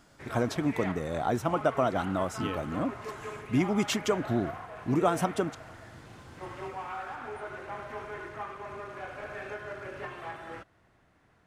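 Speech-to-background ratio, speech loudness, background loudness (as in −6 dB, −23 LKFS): 10.5 dB, −30.0 LKFS, −40.5 LKFS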